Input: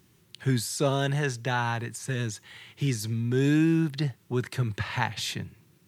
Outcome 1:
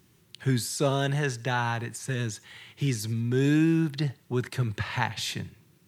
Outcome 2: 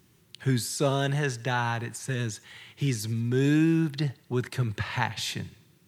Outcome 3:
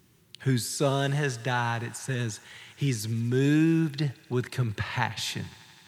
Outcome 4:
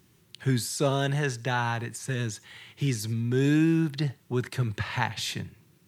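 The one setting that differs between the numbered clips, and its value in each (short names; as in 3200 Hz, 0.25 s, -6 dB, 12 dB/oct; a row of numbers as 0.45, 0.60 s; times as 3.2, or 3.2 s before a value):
thinning echo, feedback: 32, 54, 89, 16%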